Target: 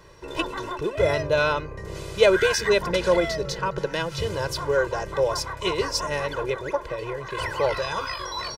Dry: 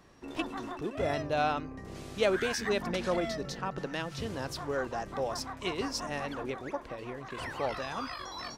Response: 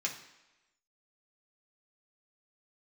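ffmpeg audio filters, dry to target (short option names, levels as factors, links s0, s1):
-af "aecho=1:1:2:0.93,volume=2.11"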